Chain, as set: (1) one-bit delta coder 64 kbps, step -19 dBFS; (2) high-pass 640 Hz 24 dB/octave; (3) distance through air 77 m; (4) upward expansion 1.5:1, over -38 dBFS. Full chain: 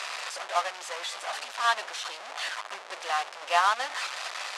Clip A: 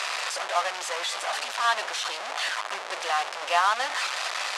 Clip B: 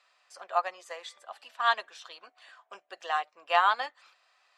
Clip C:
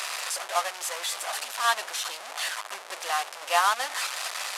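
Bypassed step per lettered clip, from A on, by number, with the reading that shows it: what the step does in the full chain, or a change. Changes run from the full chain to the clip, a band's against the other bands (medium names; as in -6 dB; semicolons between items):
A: 4, crest factor change -2.5 dB; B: 1, 8 kHz band -14.5 dB; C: 3, 8 kHz band +7.5 dB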